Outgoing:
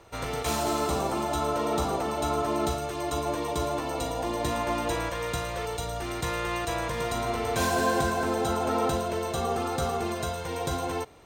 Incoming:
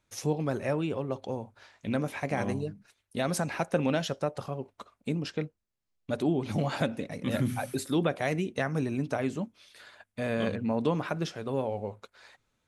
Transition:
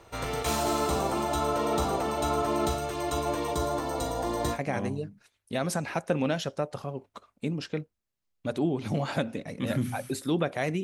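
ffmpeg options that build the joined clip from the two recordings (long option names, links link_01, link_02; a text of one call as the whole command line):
ffmpeg -i cue0.wav -i cue1.wav -filter_complex "[0:a]asettb=1/sr,asplit=3[link_01][link_02][link_03];[link_01]atrim=end=3.544[link_04];[link_02]atrim=start=3.54:end=4.59,asetpts=PTS-STARTPTS,afade=type=in:duration=0.004:curve=qsin,afade=type=out:start_time=1.046:duration=0.004:curve=qsin,equalizer=frequency=2600:width_type=o:width=0.53:gain=-8[link_05];[link_03]atrim=start=4.586[link_06];[link_04][link_05]acrossfade=duration=0.004:curve1=hsin:curve2=qsin[link_07];[link_07][link_06]acrossfade=duration=0.004:curve1=qsin:curve2=hsin,apad=whole_dur=10.83,atrim=end=10.83,atrim=end=4.59,asetpts=PTS-STARTPTS[link_08];[1:a]atrim=start=2.15:end=8.47,asetpts=PTS-STARTPTS[link_09];[link_08][link_09]acrossfade=duration=0.08:curve1=tri:curve2=tri" out.wav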